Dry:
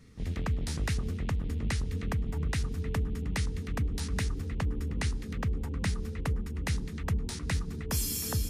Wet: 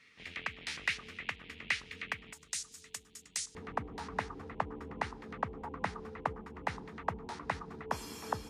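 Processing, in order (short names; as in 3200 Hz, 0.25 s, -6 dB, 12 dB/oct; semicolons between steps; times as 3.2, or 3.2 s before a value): band-pass 2400 Hz, Q 2.1, from 2.33 s 7300 Hz, from 3.55 s 890 Hz; gain +9.5 dB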